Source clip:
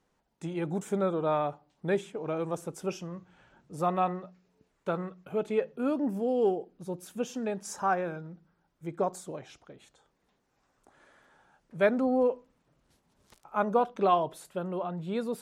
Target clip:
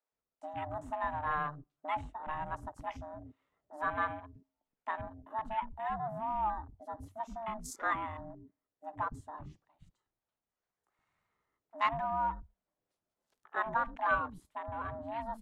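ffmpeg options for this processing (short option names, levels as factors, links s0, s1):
-filter_complex "[0:a]aeval=exprs='val(0)*sin(2*PI*450*n/s)':c=same,acrossover=split=600|3200[s0][s1][s2];[s0]acompressor=threshold=0.00794:ratio=20[s3];[s3][s1][s2]amix=inputs=3:normalize=0,acrossover=split=320[s4][s5];[s4]adelay=120[s6];[s6][s5]amix=inputs=2:normalize=0,afwtdn=0.00398"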